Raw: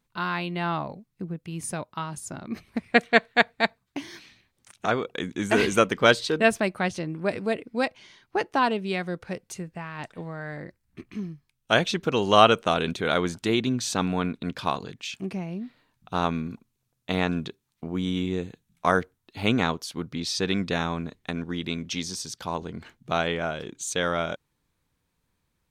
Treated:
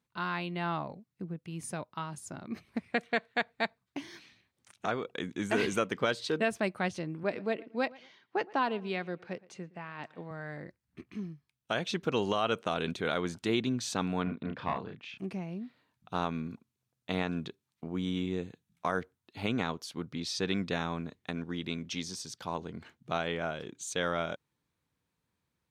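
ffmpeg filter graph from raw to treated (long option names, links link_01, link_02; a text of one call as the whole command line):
ffmpeg -i in.wav -filter_complex "[0:a]asettb=1/sr,asplit=3[link_01][link_02][link_03];[link_01]atrim=end=7.234[link_04];[link_02]atrim=start=7.23:end=10.31,asetpts=PTS-STARTPTS,afade=type=in:duration=0.004:curve=qsin,afade=type=out:start_time=3.076:duration=0.004:curve=qsin,highpass=170,lowpass=4900,asplit=2[link_05][link_06];[link_06]adelay=116,lowpass=frequency=2600:poles=1,volume=-21.5dB,asplit=2[link_07][link_08];[link_08]adelay=116,lowpass=frequency=2600:poles=1,volume=0.31[link_09];[link_05][link_07][link_09]amix=inputs=3:normalize=0,atrim=end_sample=135828[link_10];[link_03]atrim=start=10.306[link_11];[link_04][link_10]acrossfade=duration=0.004:curve1=hsin:curve2=qsin[link_12];[link_12][link_11]acrossfade=duration=0.004:curve1=qsin:curve2=hsin,asettb=1/sr,asplit=3[link_13][link_14][link_15];[link_13]atrim=end=14.234[link_16];[link_14]atrim=start=14.23:end=15.18,asetpts=PTS-STARTPTS,afade=type=in:duration=0.004:curve=qsin,afade=type=out:start_time=0.946:duration=0.004:curve=qsin,aeval=exprs='clip(val(0),-1,0.0841)':channel_layout=same,lowpass=2300,asplit=2[link_17][link_18];[link_18]adelay=32,volume=-3.5dB[link_19];[link_17][link_19]amix=inputs=2:normalize=0,atrim=end_sample=41895[link_20];[link_15]atrim=start=15.176[link_21];[link_16][link_20]acrossfade=duration=0.004:curve1=hsin:curve2=qsin[link_22];[link_22][link_21]acrossfade=duration=0.004:curve1=qsin:curve2=hsin,highpass=78,highshelf=frequency=7300:gain=-4.5,alimiter=limit=-11.5dB:level=0:latency=1:release=169,volume=-5.5dB" out.wav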